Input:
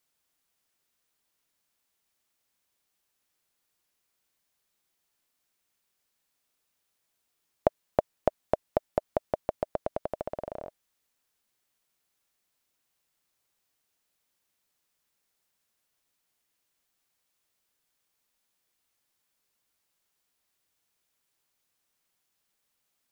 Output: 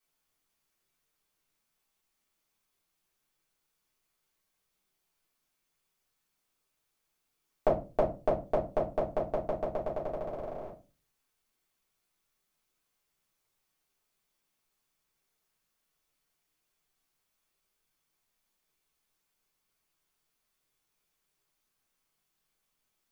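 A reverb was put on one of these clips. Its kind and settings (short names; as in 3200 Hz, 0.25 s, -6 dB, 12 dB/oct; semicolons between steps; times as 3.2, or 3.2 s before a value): shoebox room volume 120 m³, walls furnished, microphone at 3.5 m; gain -9 dB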